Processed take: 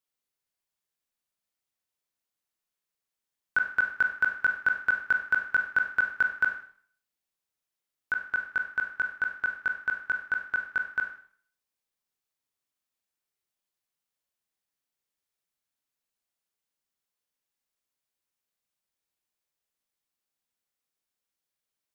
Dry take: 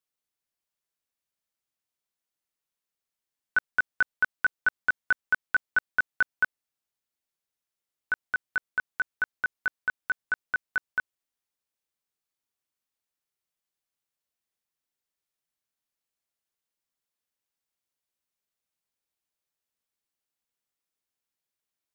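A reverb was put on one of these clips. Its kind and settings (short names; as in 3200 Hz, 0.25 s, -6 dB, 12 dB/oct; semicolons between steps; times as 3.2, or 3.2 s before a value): Schroeder reverb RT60 0.52 s, combs from 30 ms, DRR 4.5 dB; gain -1 dB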